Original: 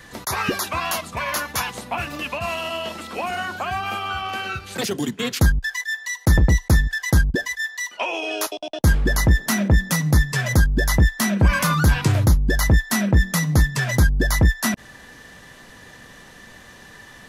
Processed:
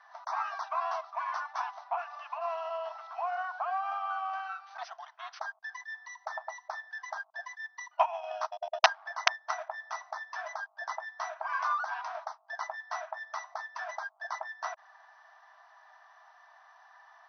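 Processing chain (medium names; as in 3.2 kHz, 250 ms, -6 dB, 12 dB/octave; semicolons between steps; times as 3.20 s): resonant high shelf 1.7 kHz -13 dB, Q 1.5; 7.61–9.67 s: transient shaper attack +11 dB, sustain -9 dB; integer overflow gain -1 dB; brick-wall FIR band-pass 620–6200 Hz; trim -7.5 dB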